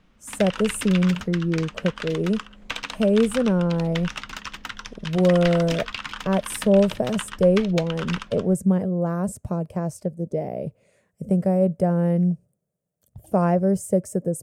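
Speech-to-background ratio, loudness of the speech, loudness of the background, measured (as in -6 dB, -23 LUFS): 11.0 dB, -23.0 LUFS, -34.0 LUFS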